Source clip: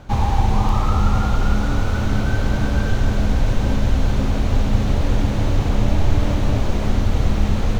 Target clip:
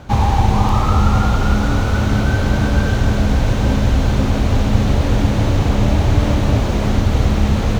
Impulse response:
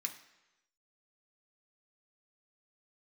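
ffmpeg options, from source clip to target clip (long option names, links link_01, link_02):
-af "highpass=40,volume=5dB"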